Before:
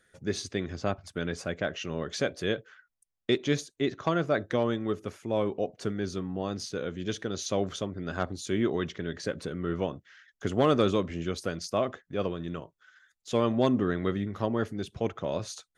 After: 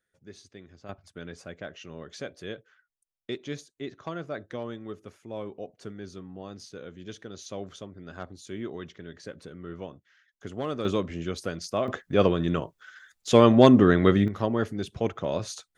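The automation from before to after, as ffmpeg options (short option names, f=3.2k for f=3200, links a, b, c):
-af "asetnsamples=n=441:p=0,asendcmd='0.89 volume volume -8.5dB;10.85 volume volume 0dB;11.88 volume volume 9.5dB;14.28 volume volume 2.5dB',volume=-16dB"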